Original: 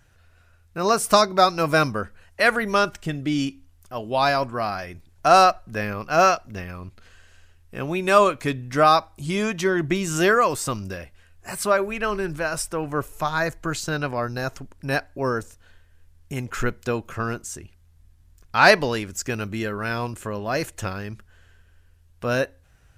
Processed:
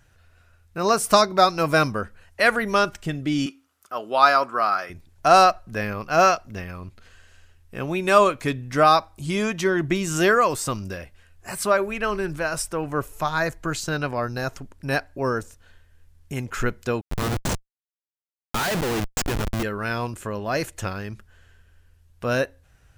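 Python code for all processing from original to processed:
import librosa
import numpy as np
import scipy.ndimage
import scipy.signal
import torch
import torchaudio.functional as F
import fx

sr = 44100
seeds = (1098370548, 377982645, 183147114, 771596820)

y = fx.chain(x, sr, fx.highpass(hz=310.0, slope=12),
    fx.peak_eq(hz=1300.0, db=12.5, octaves=0.35), at=(3.46, 4.9))
y = fx.chain(y, sr, fx.highpass(hz=96.0, slope=24),
    fx.schmitt(flips_db=-29.0), at=(17.01, 19.63))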